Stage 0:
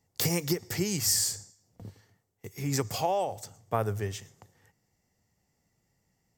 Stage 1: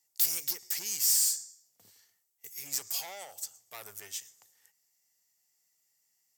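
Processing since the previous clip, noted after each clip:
tube saturation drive 29 dB, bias 0.25
first difference
level +7 dB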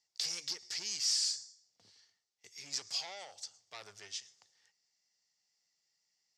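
transistor ladder low-pass 5,700 Hz, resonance 45%
level +5.5 dB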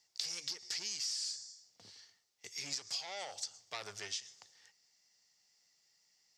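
downward compressor 8 to 1, threshold −44 dBFS, peak gain reduction 15.5 dB
level +7.5 dB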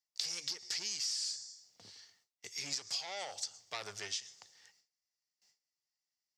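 noise gate with hold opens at −60 dBFS
level +1.5 dB

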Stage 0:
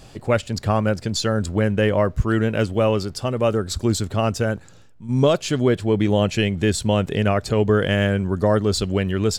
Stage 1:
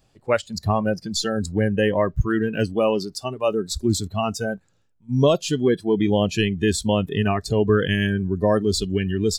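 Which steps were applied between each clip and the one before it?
noise reduction from a noise print of the clip's start 18 dB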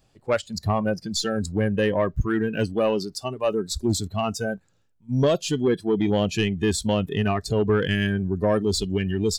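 soft clipping −11 dBFS, distortion −20 dB
level −1 dB

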